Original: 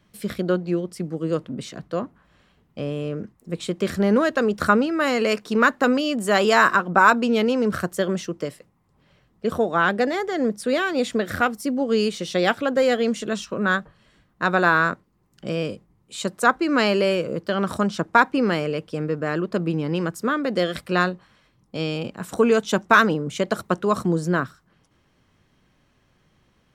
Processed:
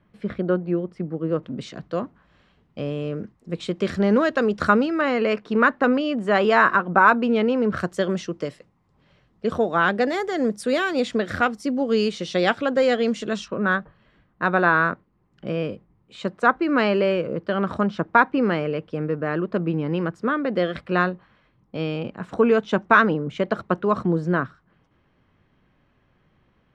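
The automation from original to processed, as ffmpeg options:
-af "asetnsamples=n=441:p=0,asendcmd='1.43 lowpass f 5100;5.01 lowpass f 2600;7.77 lowpass f 5600;10.1 lowpass f 11000;11 lowpass f 5700;13.48 lowpass f 2600',lowpass=1.9k"

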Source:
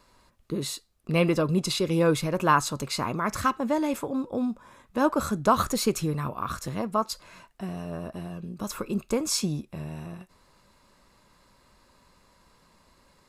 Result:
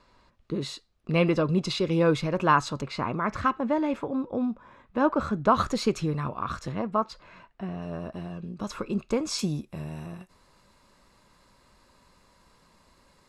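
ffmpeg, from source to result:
-af "asetnsamples=n=441:p=0,asendcmd='2.81 lowpass f 2900;5.55 lowpass f 4800;6.72 lowpass f 2900;7.82 lowpass f 5100;9.39 lowpass f 12000',lowpass=4.7k"

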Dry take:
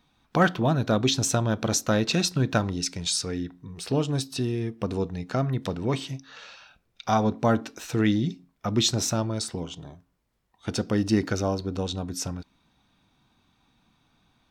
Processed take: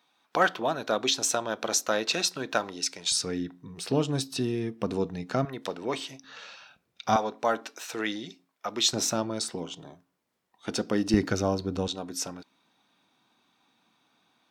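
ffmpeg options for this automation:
-af "asetnsamples=n=441:p=0,asendcmd='3.12 highpass f 150;5.45 highpass f 380;6.24 highpass f 130;7.16 highpass f 530;8.93 highpass f 220;11.14 highpass f 99;11.88 highpass f 290',highpass=450"

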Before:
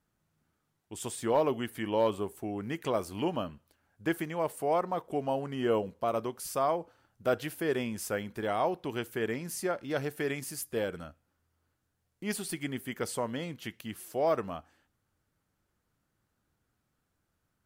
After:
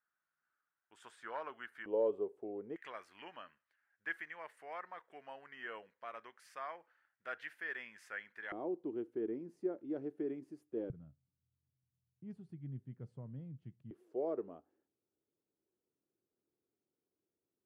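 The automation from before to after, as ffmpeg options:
-af "asetnsamples=n=441:p=0,asendcmd='1.86 bandpass f 450;2.76 bandpass f 1800;8.52 bandpass f 330;10.9 bandpass f 130;13.91 bandpass f 380',bandpass=f=1.5k:t=q:w=4:csg=0"

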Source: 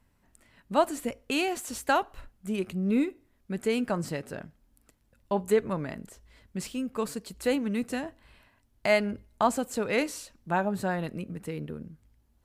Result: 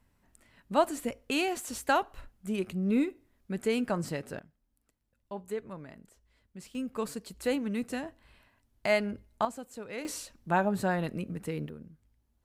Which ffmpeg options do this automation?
-af "asetnsamples=n=441:p=0,asendcmd='4.39 volume volume -12dB;6.75 volume volume -3dB;9.45 volume volume -12.5dB;10.05 volume volume 0.5dB;11.69 volume volume -6.5dB',volume=-1.5dB"

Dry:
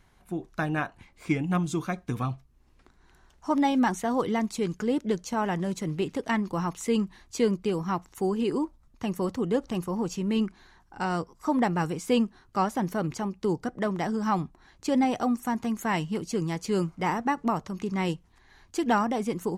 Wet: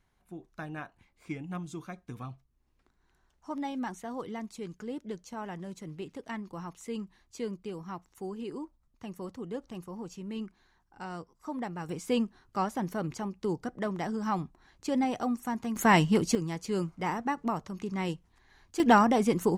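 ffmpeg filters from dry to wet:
-af "asetnsamples=n=441:p=0,asendcmd='11.89 volume volume -4.5dB;15.76 volume volume 6dB;16.35 volume volume -4.5dB;18.8 volume volume 3.5dB',volume=-11.5dB"

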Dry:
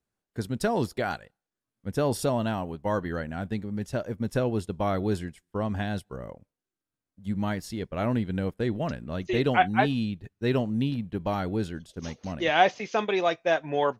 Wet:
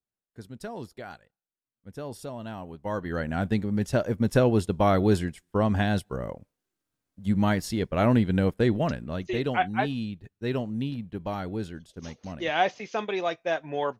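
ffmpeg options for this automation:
-af "volume=5.5dB,afade=t=in:st=2.36:d=0.67:silence=0.354813,afade=t=in:st=3.03:d=0.32:silence=0.398107,afade=t=out:st=8.6:d=0.8:silence=0.354813"

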